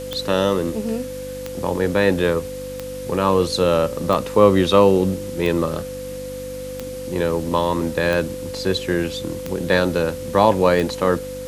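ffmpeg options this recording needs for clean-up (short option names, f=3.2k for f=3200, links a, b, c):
-af "adeclick=t=4,bandreject=f=48.9:t=h:w=4,bandreject=f=97.8:t=h:w=4,bandreject=f=146.7:t=h:w=4,bandreject=f=195.6:t=h:w=4,bandreject=f=244.5:t=h:w=4,bandreject=f=293.4:t=h:w=4,bandreject=f=510:w=30,afwtdn=0.0089"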